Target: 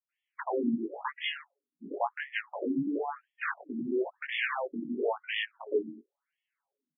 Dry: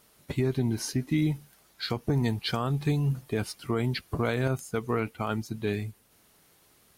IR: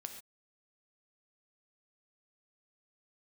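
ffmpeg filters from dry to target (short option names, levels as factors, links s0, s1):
-filter_complex "[0:a]highpass=f=42:w=0.5412,highpass=f=42:w=1.3066,afftdn=nr=26:nf=-43,lowpass=f=5500:w=0.5412,lowpass=f=5500:w=1.3066,equalizer=f=92:t=o:w=0.88:g=-10.5,aecho=1:1:7.2:0.95,asplit=2[s0][s1];[s1]acompressor=threshold=0.0251:ratio=16,volume=1.19[s2];[s0][s2]amix=inputs=2:normalize=0,aeval=exprs='0.335*(cos(1*acos(clip(val(0)/0.335,-1,1)))-cos(1*PI/2))+0.0944*(cos(8*acos(clip(val(0)/0.335,-1,1)))-cos(8*PI/2))':c=same,asoftclip=type=tanh:threshold=0.376,flanger=delay=18.5:depth=3:speed=0.76,acrossover=split=280[s3][s4];[s4]adelay=90[s5];[s3][s5]amix=inputs=2:normalize=0,afftfilt=real='re*between(b*sr/1024,240*pow(2500/240,0.5+0.5*sin(2*PI*0.97*pts/sr))/1.41,240*pow(2500/240,0.5+0.5*sin(2*PI*0.97*pts/sr))*1.41)':imag='im*between(b*sr/1024,240*pow(2500/240,0.5+0.5*sin(2*PI*0.97*pts/sr))/1.41,240*pow(2500/240,0.5+0.5*sin(2*PI*0.97*pts/sr))*1.41)':win_size=1024:overlap=0.75,volume=1.5"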